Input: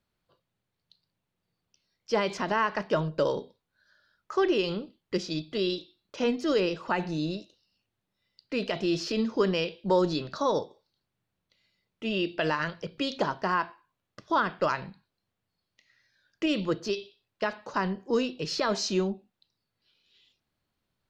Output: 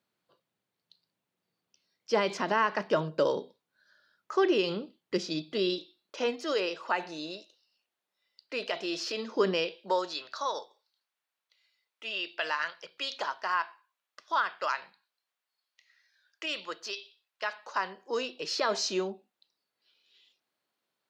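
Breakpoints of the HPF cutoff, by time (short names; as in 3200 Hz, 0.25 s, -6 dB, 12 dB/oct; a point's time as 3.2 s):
5.71 s 200 Hz
6.44 s 520 Hz
9.21 s 520 Hz
9.48 s 230 Hz
10.12 s 930 Hz
17.43 s 930 Hz
18.76 s 370 Hz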